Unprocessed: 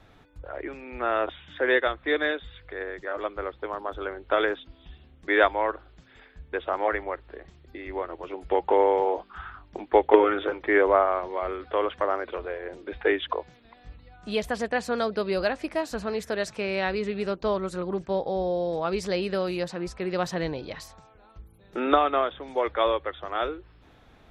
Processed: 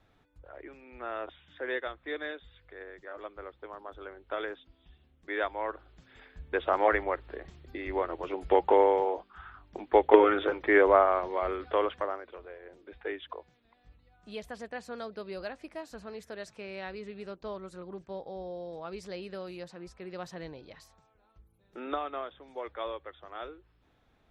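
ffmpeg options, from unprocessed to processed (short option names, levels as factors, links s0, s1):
-af "volume=2.99,afade=t=in:st=5.45:d=1.26:silence=0.237137,afade=t=out:st=8.5:d=0.84:silence=0.298538,afade=t=in:st=9.34:d=0.88:silence=0.375837,afade=t=out:st=11.73:d=0.49:silence=0.251189"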